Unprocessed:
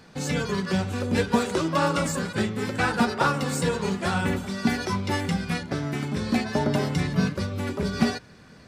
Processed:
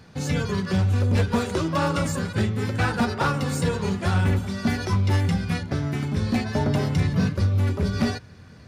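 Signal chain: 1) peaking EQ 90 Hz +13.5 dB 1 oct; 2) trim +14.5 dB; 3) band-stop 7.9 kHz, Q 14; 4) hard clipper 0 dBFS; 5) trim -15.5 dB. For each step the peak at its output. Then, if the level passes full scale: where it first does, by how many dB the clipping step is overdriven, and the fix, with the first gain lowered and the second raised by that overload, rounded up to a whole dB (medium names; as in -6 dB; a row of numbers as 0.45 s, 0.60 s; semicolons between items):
-6.5 dBFS, +8.0 dBFS, +8.0 dBFS, 0.0 dBFS, -15.5 dBFS; step 2, 8.0 dB; step 2 +6.5 dB, step 5 -7.5 dB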